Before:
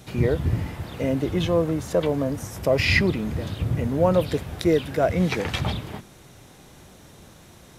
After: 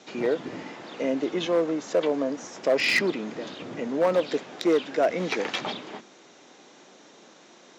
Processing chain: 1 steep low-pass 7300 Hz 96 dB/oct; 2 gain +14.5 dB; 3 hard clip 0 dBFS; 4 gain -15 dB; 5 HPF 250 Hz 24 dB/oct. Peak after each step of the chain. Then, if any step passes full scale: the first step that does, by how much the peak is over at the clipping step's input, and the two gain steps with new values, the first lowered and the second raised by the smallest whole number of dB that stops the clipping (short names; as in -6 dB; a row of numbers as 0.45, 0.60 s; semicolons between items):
-5.5, +9.0, 0.0, -15.0, -11.0 dBFS; step 2, 9.0 dB; step 2 +5.5 dB, step 4 -6 dB